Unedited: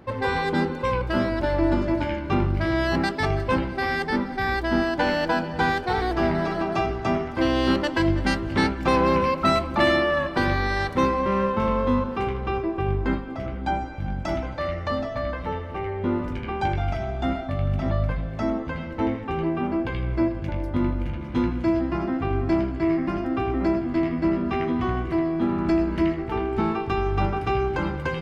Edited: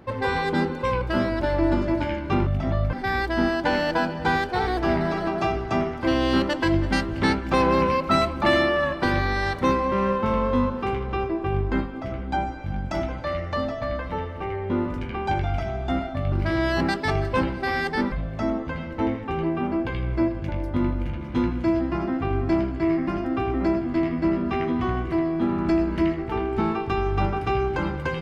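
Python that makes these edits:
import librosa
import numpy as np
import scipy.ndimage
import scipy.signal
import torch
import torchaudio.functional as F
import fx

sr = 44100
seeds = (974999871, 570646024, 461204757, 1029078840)

y = fx.edit(x, sr, fx.swap(start_s=2.47, length_s=1.8, other_s=17.66, other_length_s=0.46), tone=tone)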